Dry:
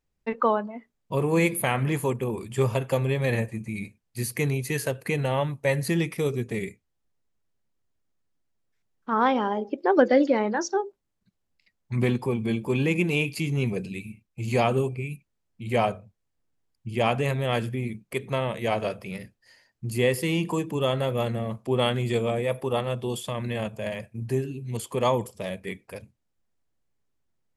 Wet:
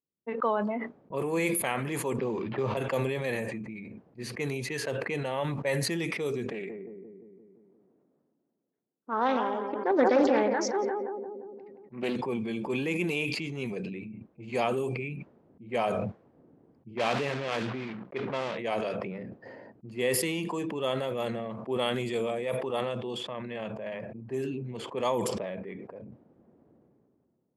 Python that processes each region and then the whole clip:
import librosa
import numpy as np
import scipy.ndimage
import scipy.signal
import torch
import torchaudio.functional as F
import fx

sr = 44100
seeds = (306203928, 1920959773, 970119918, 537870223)

y = fx.chain(x, sr, fx.sample_hold(seeds[0], rate_hz=7200.0, jitter_pct=0),
    fx.air_absorb(metres=300.0),
    fx.band_squash(depth_pct=100), at=(2.18, 2.77))
y = fx.chain(y, sr, fx.highpass(hz=180.0, slope=12),
    fx.echo_wet_lowpass(ms=174, feedback_pct=38, hz=2000.0, wet_db=-7.5),
    fx.doppler_dist(depth_ms=0.27), at=(6.52, 12.16))
y = fx.chain(y, sr, fx.block_float(bits=3),
    fx.lowpass(hz=3900.0, slope=12), at=(16.97, 18.59))
y = fx.env_lowpass(y, sr, base_hz=390.0, full_db=-20.5)
y = scipy.signal.sosfilt(scipy.signal.butter(2, 230.0, 'highpass', fs=sr, output='sos'), y)
y = fx.sustainer(y, sr, db_per_s=23.0)
y = F.gain(torch.from_numpy(y), -5.5).numpy()